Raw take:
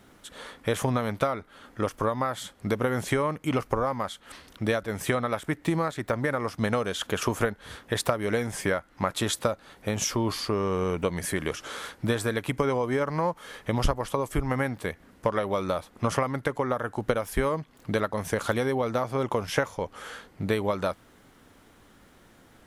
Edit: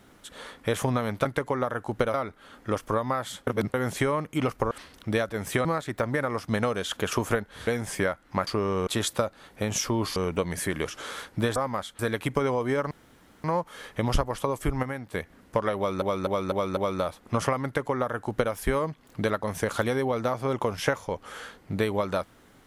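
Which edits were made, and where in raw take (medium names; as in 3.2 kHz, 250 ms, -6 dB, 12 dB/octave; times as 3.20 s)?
2.58–2.85 s: reverse
3.82–4.25 s: move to 12.22 s
5.19–5.75 s: delete
7.77–8.33 s: delete
10.42–10.82 s: move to 9.13 s
13.14 s: insert room tone 0.53 s
14.53–14.83 s: gain -6.5 dB
15.47–15.72 s: loop, 5 plays
16.34–17.23 s: copy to 1.25 s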